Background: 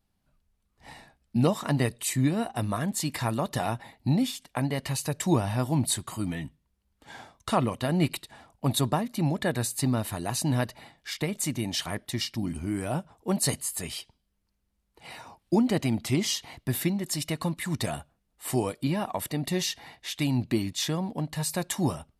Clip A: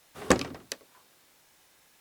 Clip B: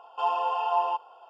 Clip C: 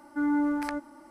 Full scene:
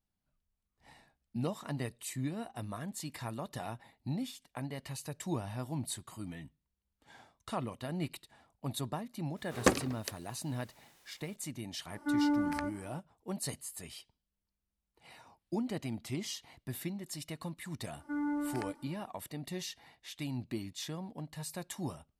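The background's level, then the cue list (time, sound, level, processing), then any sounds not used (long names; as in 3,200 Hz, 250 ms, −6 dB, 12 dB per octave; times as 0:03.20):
background −12 dB
0:09.36: mix in A −3.5 dB, fades 0.02 s
0:11.90: mix in C −3.5 dB
0:17.93: mix in C −8.5 dB
not used: B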